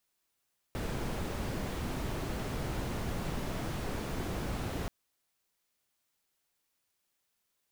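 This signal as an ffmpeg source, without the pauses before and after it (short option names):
-f lavfi -i "anoisesrc=c=brown:a=0.0832:d=4.13:r=44100:seed=1"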